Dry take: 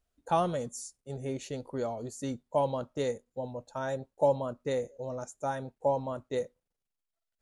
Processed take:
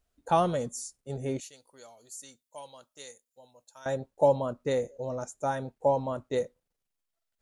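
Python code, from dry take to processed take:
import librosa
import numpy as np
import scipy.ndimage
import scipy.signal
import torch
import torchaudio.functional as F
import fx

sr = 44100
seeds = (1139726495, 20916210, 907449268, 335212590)

y = fx.pre_emphasis(x, sr, coefficient=0.97, at=(1.4, 3.86))
y = y * librosa.db_to_amplitude(3.0)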